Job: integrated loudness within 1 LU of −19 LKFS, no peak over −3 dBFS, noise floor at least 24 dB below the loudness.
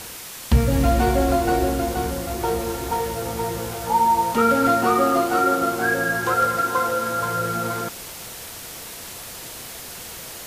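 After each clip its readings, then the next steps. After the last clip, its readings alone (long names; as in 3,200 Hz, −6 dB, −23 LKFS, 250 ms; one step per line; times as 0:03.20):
background noise floor −37 dBFS; target noise floor −45 dBFS; integrated loudness −21.0 LKFS; sample peak −6.5 dBFS; target loudness −19.0 LKFS
→ broadband denoise 8 dB, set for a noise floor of −37 dBFS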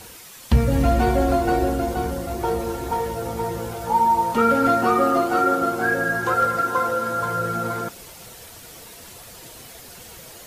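background noise floor −43 dBFS; target noise floor −45 dBFS
→ broadband denoise 6 dB, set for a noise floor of −43 dBFS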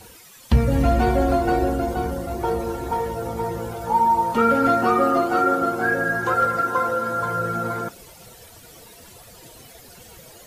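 background noise floor −46 dBFS; integrated loudness −21.5 LKFS; sample peak −6.5 dBFS; target loudness −19.0 LKFS
→ level +2.5 dB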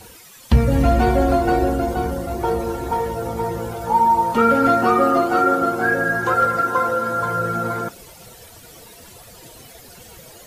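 integrated loudness −19.0 LKFS; sample peak −4.0 dBFS; background noise floor −44 dBFS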